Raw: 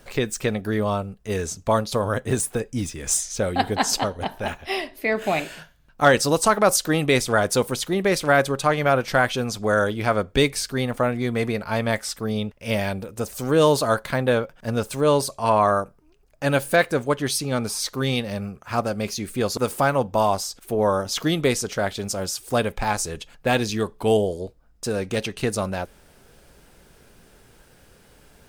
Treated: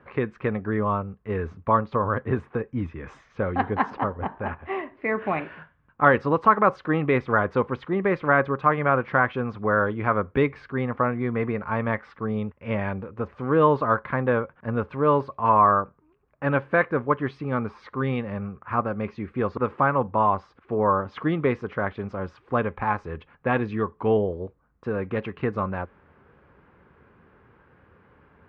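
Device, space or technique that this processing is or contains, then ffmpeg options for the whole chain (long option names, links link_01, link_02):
bass cabinet: -filter_complex "[0:a]asettb=1/sr,asplit=3[link_01][link_02][link_03];[link_01]atrim=end=3.904[link_04];[link_02]atrim=start=3.9:end=4.97,asetpts=PTS-STARTPTS,afade=type=in:duration=0.004:curve=qsin,afade=type=out:start_time=1.066:duration=0.004:curve=qsin,aemphasis=mode=reproduction:type=75fm[link_05];[link_03]atrim=start=4.966[link_06];[link_04][link_05]acrossfade=duration=0.004:curve1=hsin:curve2=qsin[link_07];[link_07][link_06]acrossfade=duration=0.004:curve1=qsin:curve2=hsin,highpass=80,equalizer=frequency=82:width_type=q:width=4:gain=6,equalizer=frequency=660:width_type=q:width=4:gain=-6,equalizer=frequency=1100:width_type=q:width=4:gain=8,lowpass=frequency=2100:width=0.5412,lowpass=frequency=2100:width=1.3066,volume=-1.5dB"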